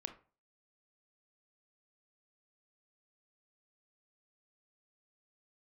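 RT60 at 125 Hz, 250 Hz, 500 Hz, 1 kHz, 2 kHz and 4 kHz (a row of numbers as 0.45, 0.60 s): 0.40, 0.40, 0.40, 0.40, 0.30, 0.25 s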